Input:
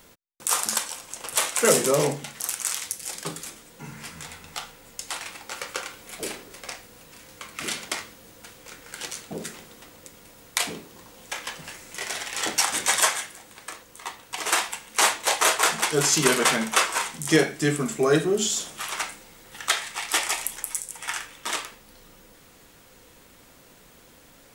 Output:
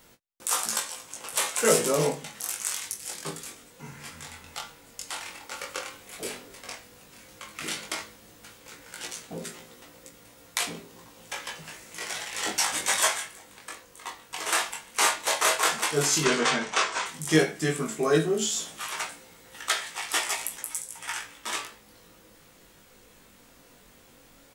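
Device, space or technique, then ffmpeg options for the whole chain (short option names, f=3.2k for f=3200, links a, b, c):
double-tracked vocal: -filter_complex "[0:a]asplit=3[a][b][c];[a]afade=t=out:st=16.22:d=0.02[d];[b]lowpass=f=7k:w=0.5412,lowpass=f=7k:w=1.3066,afade=t=in:st=16.22:d=0.02,afade=t=out:st=17.05:d=0.02[e];[c]afade=t=in:st=17.05:d=0.02[f];[d][e][f]amix=inputs=3:normalize=0,asplit=2[g][h];[h]adelay=25,volume=-12.5dB[i];[g][i]amix=inputs=2:normalize=0,flanger=delay=17:depth=4.6:speed=0.1"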